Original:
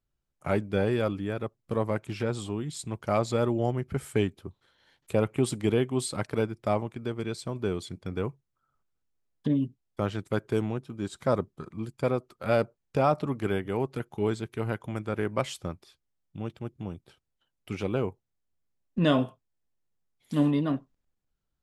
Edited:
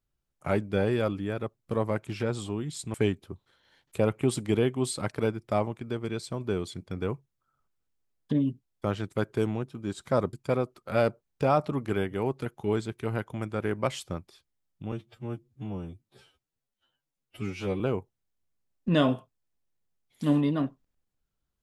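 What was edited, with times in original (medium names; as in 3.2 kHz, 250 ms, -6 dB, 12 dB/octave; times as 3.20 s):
2.94–4.09 s: delete
11.48–11.87 s: delete
16.46–17.90 s: stretch 2×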